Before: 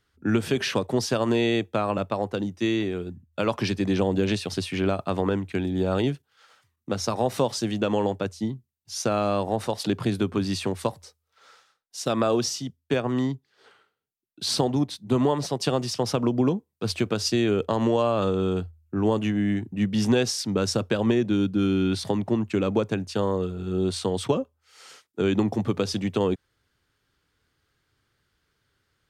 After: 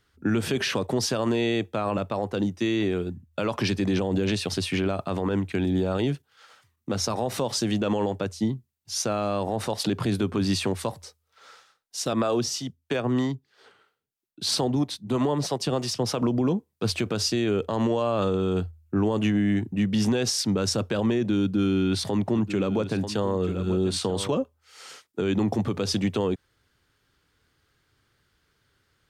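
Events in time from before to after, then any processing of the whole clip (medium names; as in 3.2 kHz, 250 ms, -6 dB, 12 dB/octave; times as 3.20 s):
12.13–16.22 s: harmonic tremolo 3.1 Hz, depth 50%, crossover 410 Hz
21.41–24.29 s: delay 937 ms -14.5 dB
whole clip: peak limiter -19.5 dBFS; trim +3.5 dB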